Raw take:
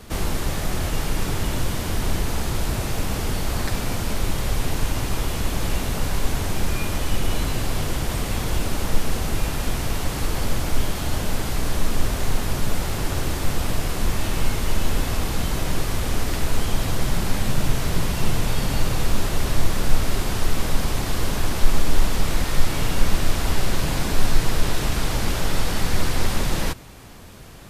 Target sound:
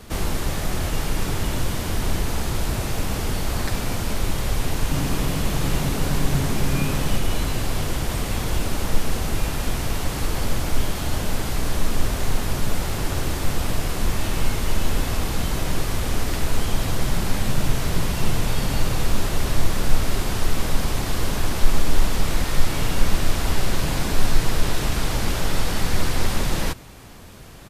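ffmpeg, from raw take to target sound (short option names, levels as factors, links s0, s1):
-filter_complex "[0:a]asplit=3[s0][s1][s2];[s0]afade=t=out:st=4.9:d=0.02[s3];[s1]asplit=5[s4][s5][s6][s7][s8];[s5]adelay=85,afreqshift=130,volume=0.447[s9];[s6]adelay=170,afreqshift=260,volume=0.166[s10];[s7]adelay=255,afreqshift=390,volume=0.061[s11];[s8]adelay=340,afreqshift=520,volume=0.0226[s12];[s4][s9][s10][s11][s12]amix=inputs=5:normalize=0,afade=t=in:st=4.9:d=0.02,afade=t=out:st=7.17:d=0.02[s13];[s2]afade=t=in:st=7.17:d=0.02[s14];[s3][s13][s14]amix=inputs=3:normalize=0"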